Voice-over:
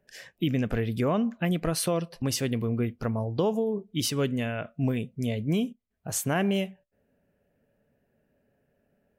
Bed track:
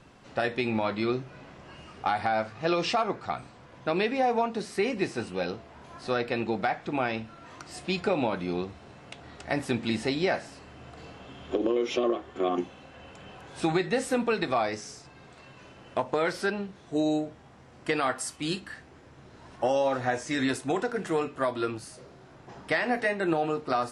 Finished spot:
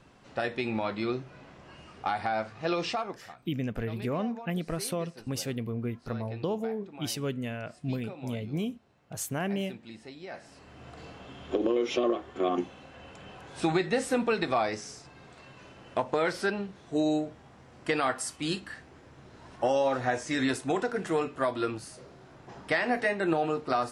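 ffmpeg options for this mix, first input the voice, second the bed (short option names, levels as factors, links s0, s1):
-filter_complex "[0:a]adelay=3050,volume=0.531[s0];[1:a]volume=5.01,afade=t=out:st=2.81:d=0.51:silence=0.188365,afade=t=in:st=10.27:d=0.63:silence=0.141254[s1];[s0][s1]amix=inputs=2:normalize=0"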